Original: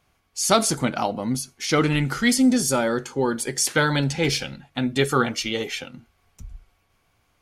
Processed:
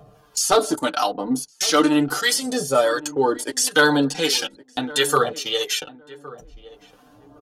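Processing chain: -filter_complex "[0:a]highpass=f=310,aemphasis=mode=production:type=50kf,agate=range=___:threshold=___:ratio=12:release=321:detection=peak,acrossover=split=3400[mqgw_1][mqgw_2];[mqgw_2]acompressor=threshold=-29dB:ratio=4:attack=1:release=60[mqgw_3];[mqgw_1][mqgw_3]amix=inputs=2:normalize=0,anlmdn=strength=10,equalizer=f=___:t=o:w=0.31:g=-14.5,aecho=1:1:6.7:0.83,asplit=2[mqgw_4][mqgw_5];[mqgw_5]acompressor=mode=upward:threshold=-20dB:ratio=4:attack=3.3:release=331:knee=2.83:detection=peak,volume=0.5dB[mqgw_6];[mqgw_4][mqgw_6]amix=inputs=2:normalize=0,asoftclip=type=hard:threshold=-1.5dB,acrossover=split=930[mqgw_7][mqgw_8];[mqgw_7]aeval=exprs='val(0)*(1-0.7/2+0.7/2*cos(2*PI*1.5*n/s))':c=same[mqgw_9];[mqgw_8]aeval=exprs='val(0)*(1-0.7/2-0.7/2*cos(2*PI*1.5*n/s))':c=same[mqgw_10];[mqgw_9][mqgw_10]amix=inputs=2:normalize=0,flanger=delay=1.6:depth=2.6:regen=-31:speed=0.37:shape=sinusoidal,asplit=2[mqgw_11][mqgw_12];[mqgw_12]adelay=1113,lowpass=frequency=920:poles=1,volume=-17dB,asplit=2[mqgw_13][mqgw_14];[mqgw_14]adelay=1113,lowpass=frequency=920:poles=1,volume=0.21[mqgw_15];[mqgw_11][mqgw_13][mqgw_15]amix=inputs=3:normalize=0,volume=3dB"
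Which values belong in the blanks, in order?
-13dB, -38dB, 2.2k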